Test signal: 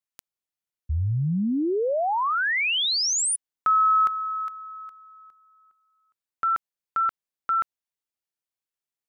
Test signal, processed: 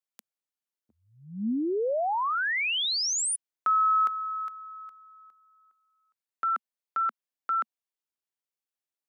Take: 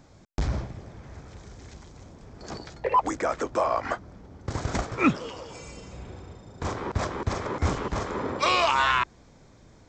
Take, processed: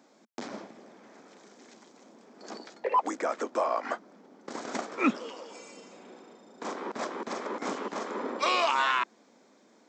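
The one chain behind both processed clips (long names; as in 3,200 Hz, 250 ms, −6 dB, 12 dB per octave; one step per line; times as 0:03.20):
elliptic high-pass filter 220 Hz, stop band 80 dB
level −3 dB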